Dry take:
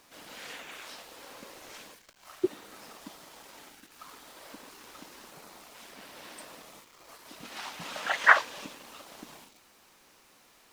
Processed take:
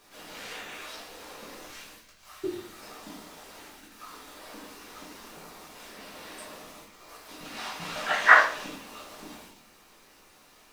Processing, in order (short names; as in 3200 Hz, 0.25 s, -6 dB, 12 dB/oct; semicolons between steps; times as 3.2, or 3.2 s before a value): 1.66–2.8 bell 460 Hz -7 dB 2.3 oct; shoebox room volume 63 m³, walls mixed, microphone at 1.2 m; gain -2.5 dB